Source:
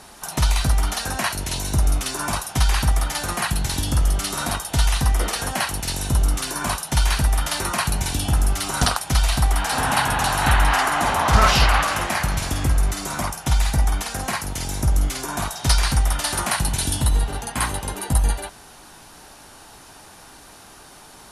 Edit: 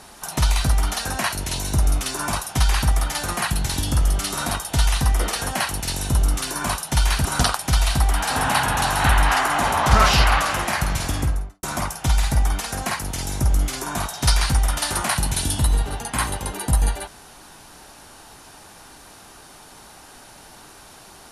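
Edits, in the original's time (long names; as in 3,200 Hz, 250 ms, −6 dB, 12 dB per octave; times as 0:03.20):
0:07.25–0:08.67: remove
0:12.54–0:13.05: fade out and dull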